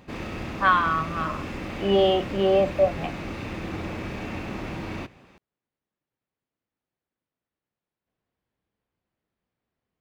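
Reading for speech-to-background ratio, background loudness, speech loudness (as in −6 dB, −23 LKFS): 11.0 dB, −34.0 LKFS, −23.0 LKFS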